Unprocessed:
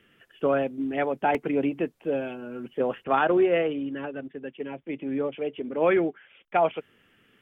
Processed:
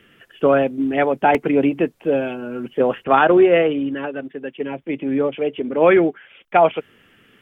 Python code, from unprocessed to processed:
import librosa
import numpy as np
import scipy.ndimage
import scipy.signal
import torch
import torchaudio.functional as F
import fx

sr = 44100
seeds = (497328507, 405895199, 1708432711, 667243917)

y = fx.low_shelf(x, sr, hz=160.0, db=-8.5, at=(3.94, 4.59))
y = F.gain(torch.from_numpy(y), 8.5).numpy()